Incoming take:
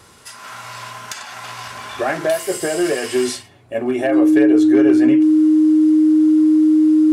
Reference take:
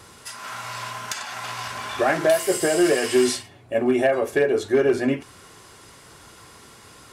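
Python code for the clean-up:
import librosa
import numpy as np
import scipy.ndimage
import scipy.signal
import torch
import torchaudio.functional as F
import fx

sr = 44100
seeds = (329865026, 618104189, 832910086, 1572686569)

y = fx.notch(x, sr, hz=310.0, q=30.0)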